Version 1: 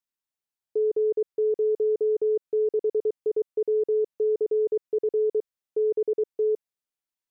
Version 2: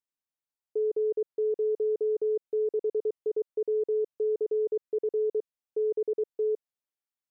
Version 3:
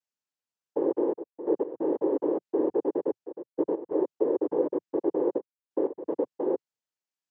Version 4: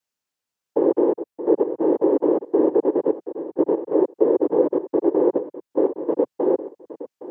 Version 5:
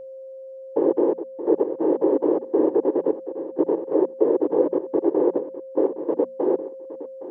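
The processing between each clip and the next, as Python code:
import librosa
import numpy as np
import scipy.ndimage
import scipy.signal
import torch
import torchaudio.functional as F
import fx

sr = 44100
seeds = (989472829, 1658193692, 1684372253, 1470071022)

y1 = fx.peak_eq(x, sr, hz=580.0, db=3.5, octaves=2.6)
y1 = y1 * librosa.db_to_amplitude(-7.0)
y2 = fx.noise_vocoder(y1, sr, seeds[0], bands=8)
y2 = fx.step_gate(y2, sr, bpm=92, pattern='xxxxxxx..x.xx', floor_db=-12.0, edge_ms=4.5)
y2 = y2 * librosa.db_to_amplitude(1.5)
y3 = y2 + 10.0 ** (-14.5 / 20.0) * np.pad(y2, (int(815 * sr / 1000.0), 0))[:len(y2)]
y3 = y3 * librosa.db_to_amplitude(8.0)
y4 = y3 + 10.0 ** (-34.0 / 20.0) * np.sin(2.0 * np.pi * 530.0 * np.arange(len(y3)) / sr)
y4 = fx.hum_notches(y4, sr, base_hz=60, count=4)
y4 = y4 * librosa.db_to_amplitude(-1.5)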